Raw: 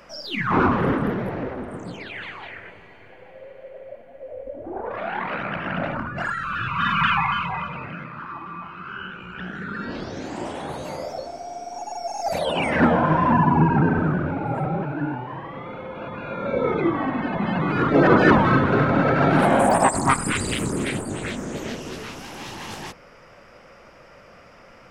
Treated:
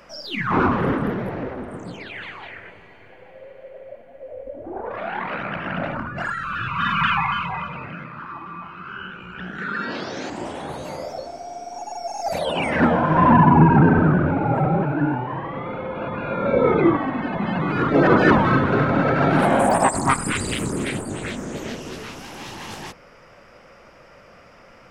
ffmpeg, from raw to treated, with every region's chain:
-filter_complex "[0:a]asettb=1/sr,asplit=3[a][b][c];[a]atrim=end=9.584[d];[b]atrim=start=9.58:end=10.3,asetpts=PTS-STARTPTS,afade=t=in:d=0.004:c=qsin,afade=t=out:st=0.716:d=0.004:c=qsin,lowshelf=f=480:g=-8.5,acontrast=81,highpass=130,lowpass=7.7k[e];[c]atrim=start=10.296[f];[d][e]acrossfade=d=0.004:c1=hsin:c2=qsin[g];[g][f]acrossfade=d=0.004:c1=qsin:c2=hsin,asettb=1/sr,asplit=3[h][i][j];[h]atrim=end=13.164[k];[i]atrim=start=13.16:end=16.97,asetpts=PTS-STARTPTS,afade=t=in:d=0.004:c=qsin,afade=t=out:st=3.806:d=0.004:c=qsin,lowpass=f=2.8k:p=1,acontrast=40[l];[j]atrim=start=16.966[m];[k][l]acrossfade=d=0.004:c1=hsin:c2=qsin[n];[n][m]acrossfade=d=0.004:c1=qsin:c2=hsin"

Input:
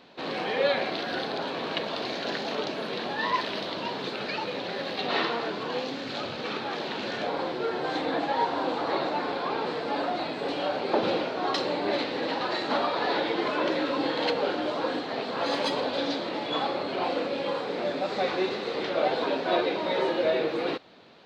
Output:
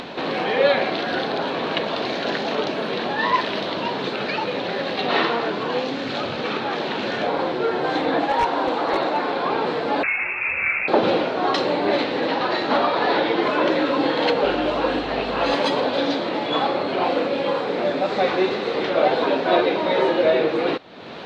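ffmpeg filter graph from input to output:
-filter_complex "[0:a]asettb=1/sr,asplit=3[a][b][c];[a]atrim=end=8.254[d];[b]atrim=start=8.25:end=9.37,asetpts=PTS-STARTPTS,afade=t=in:d=0.004:c=qsin,afade=t=out:st=1.116:d=0.004:c=qsin,highpass=f=210:p=1,aeval=exprs='0.1*(abs(mod(val(0)/0.1+3,4)-2)-1)':c=same[e];[c]atrim=start=9.366[f];[d][e]acrossfade=d=0.004:c1=hsin:c2=qsin[g];[g][f]acrossfade=d=0.004:c1=qsin:c2=hsin,asettb=1/sr,asplit=3[h][i][j];[h]atrim=end=10.034[k];[i]atrim=start=10.03:end=10.88,asetpts=PTS-STARTPTS,afade=t=in:d=0.004:c=qsin,afade=t=out:st=0.846:d=0.004:c=qsin,highpass=47,lowpass=f=2.5k:t=q:w=0.5098,lowpass=f=2.5k:t=q:w=0.6013,lowpass=f=2.5k:t=q:w=0.9,lowpass=f=2.5k:t=q:w=2.563,afreqshift=-2900[l];[j]atrim=start=10.876[m];[k][l]acrossfade=d=0.004:c1=hsin:c2=qsin[n];[n][m]acrossfade=d=0.004:c1=qsin:c2=hsin,asettb=1/sr,asplit=3[o][p][q];[o]atrim=end=12.284[r];[p]atrim=start=12.28:end=13.43,asetpts=PTS-STARTPTS,afade=t=in:d=0.004:c=qsin,afade=t=out:st=1.146:d=0.004:c=qsin,lowpass=f=6.9k:w=0.5412,lowpass=f=6.9k:w=1.3066,asoftclip=type=hard:threshold=-15.5dB[s];[q]atrim=start=13.426[t];[r][s]acrossfade=d=0.004:c1=hsin:c2=qsin[u];[u][t]acrossfade=d=0.004:c1=qsin:c2=hsin,asettb=1/sr,asplit=3[v][w][x];[v]atrim=end=14.444[y];[w]atrim=start=14.44:end=15.54,asetpts=PTS-STARTPTS,afade=t=in:d=0.004:c=qsin,afade=t=out:st=1.096:d=0.004:c=qsin,equalizer=f=2.7k:t=o:w=0.21:g=6.5,aeval=exprs='val(0)+0.00447*(sin(2*PI*50*n/s)+sin(2*PI*2*50*n/s)/2+sin(2*PI*3*50*n/s)/3+sin(2*PI*4*50*n/s)/4+sin(2*PI*5*50*n/s)/5)':c=same[z];[x]atrim=start=15.536[aa];[y][z]acrossfade=d=0.004:c1=hsin:c2=qsin[ab];[ab][aa]acrossfade=d=0.004:c1=qsin:c2=hsin,equalizer=f=4.7k:w=4.1:g=-3,acompressor=mode=upward:threshold=-30dB:ratio=2.5,highshelf=f=7.1k:g=-10,volume=7.5dB"

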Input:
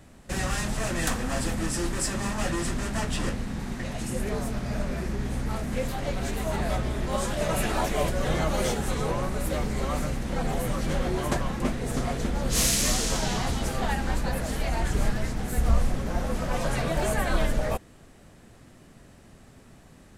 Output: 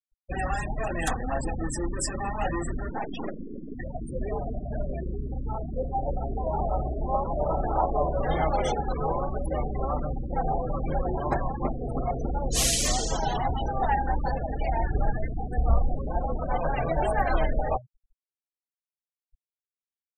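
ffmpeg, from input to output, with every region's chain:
-filter_complex "[0:a]asettb=1/sr,asplit=3[a][b][c];[a]atrim=end=2.904[d];[b]atrim=start=2.9:end=3.75,asetpts=PTS-STARTPTS,afade=t=in:d=0.004:c=qsin,afade=t=out:st=0.846:d=0.004:c=qsin,lowpass=10k,aeval=exprs='abs(val(0))':c=same,lowshelf=f=160:t=q:w=3:g=-7.5[e];[c]atrim=start=3.746[f];[d][e]acrossfade=d=0.004:c1=hsin:c2=qsin[g];[g][f]acrossfade=d=0.004:c1=qsin:c2=hsin,asettb=1/sr,asplit=3[h][i][j];[h]atrim=end=5.124[k];[i]atrim=start=5.12:end=8.22,asetpts=PTS-STARTPTS,afade=t=in:d=0.004:c=qsin,afade=t=out:st=3.096:d=0.004:c=qsin,lowpass=f=1.3k:w=0.5412,lowpass=f=1.3k:w=1.3066,aemphasis=mode=production:type=75fm,aecho=1:1:665:0.398,atrim=end_sample=136710[l];[j]atrim=start=8.216[m];[k][l]acrossfade=d=0.004:c1=hsin:c2=qsin[n];[n][m]acrossfade=d=0.004:c1=qsin:c2=hsin,bandreject=f=123.5:t=h:w=4,bandreject=f=247:t=h:w=4,bandreject=f=370.5:t=h:w=4,bandreject=f=494:t=h:w=4,bandreject=f=617.5:t=h:w=4,bandreject=f=741:t=h:w=4,bandreject=f=864.5:t=h:w=4,bandreject=f=988:t=h:w=4,bandreject=f=1.1115k:t=h:w=4,bandreject=f=1.235k:t=h:w=4,bandreject=f=1.3585k:t=h:w=4,bandreject=f=1.482k:t=h:w=4,bandreject=f=1.6055k:t=h:w=4,bandreject=f=1.729k:t=h:w=4,bandreject=f=1.8525k:t=h:w=4,bandreject=f=1.976k:t=h:w=4,bandreject=f=2.0995k:t=h:w=4,bandreject=f=2.223k:t=h:w=4,afftfilt=real='re*gte(hypot(re,im),0.0447)':imag='im*gte(hypot(re,im),0.0447)':win_size=1024:overlap=0.75,equalizer=f=200:t=o:w=0.33:g=-10,equalizer=f=800:t=o:w=0.33:g=10,equalizer=f=3.15k:t=o:w=0.33:g=5"

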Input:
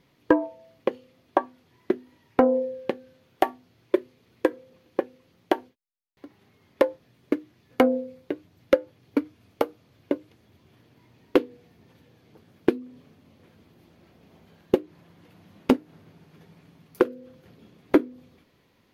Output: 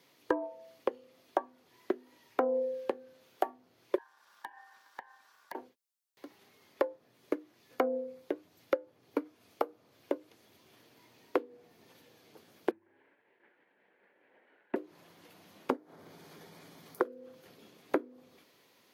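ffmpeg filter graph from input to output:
-filter_complex "[0:a]asettb=1/sr,asplit=3[a][b][c];[a]atrim=end=3.984[d];[b]atrim=start=3.98:end=5.55,asetpts=PTS-STARTPTS,afade=t=in:d=0.004:c=qsin,afade=t=out:st=1.566:d=0.004:c=qsin,acompressor=threshold=-37dB:ratio=4:attack=3.2:release=140:knee=1:detection=peak,aeval=exprs='val(0)*sin(2*PI*1300*n/s)':c=same[e];[c]atrim=start=5.546[f];[d][e]acrossfade=d=0.004:c1=hsin:c2=qsin[g];[g][f]acrossfade=d=0.004:c1=qsin:c2=hsin,asettb=1/sr,asplit=3[h][i][j];[h]atrim=end=12.714[k];[i]atrim=start=12.71:end=14.76,asetpts=PTS-STARTPTS,afade=t=in:d=0.004:c=qsin,afade=t=out:st=2.046:d=0.004:c=qsin,agate=range=-33dB:threshold=-54dB:ratio=3:release=100:detection=peak,afreqshift=-150,highpass=360,equalizer=f=660:t=q:w=4:g=-4,equalizer=f=1.2k:t=q:w=4:g=-9,equalizer=f=1.7k:t=q:w=4:g=7,lowpass=f=2.2k:w=0.5412,lowpass=f=2.2k:w=1.3066[l];[j]atrim=start=14.756[m];[k][l]acrossfade=d=0.004:c1=hsin:c2=qsin[n];[n][m]acrossfade=d=0.004:c1=qsin:c2=hsin,asettb=1/sr,asplit=3[o][p][q];[o]atrim=end=15.704[r];[p]atrim=start=15.7:end=17.09,asetpts=PTS-STARTPTS,afade=t=in:d=0.004:c=qsin,afade=t=out:st=1.386:d=0.004:c=qsin,bandreject=f=2.7k:w=8,acompressor=mode=upward:threshold=-40dB:ratio=2.5:attack=3.2:release=140:knee=2.83:detection=peak[s];[q]atrim=start=17.086[t];[r][s]acrossfade=d=0.004:c1=hsin:c2=qsin[u];[u][t]acrossfade=d=0.004:c1=qsin:c2=hsin,highpass=90,bass=f=250:g=-13,treble=f=4k:g=7,acrossover=split=270|1600[v][w][x];[v]acompressor=threshold=-45dB:ratio=4[y];[w]acompressor=threshold=-28dB:ratio=4[z];[x]acompressor=threshold=-57dB:ratio=4[aa];[y][z][aa]amix=inputs=3:normalize=0"

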